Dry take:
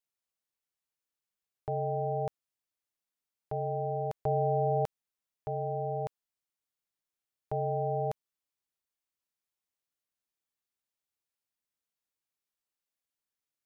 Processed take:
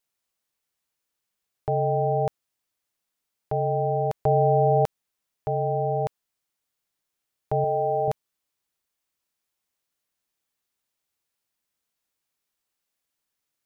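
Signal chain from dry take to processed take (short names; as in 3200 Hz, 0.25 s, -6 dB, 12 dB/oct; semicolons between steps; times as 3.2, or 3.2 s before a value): 7.64–8.08 tone controls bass -11 dB, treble +9 dB; gain +8.5 dB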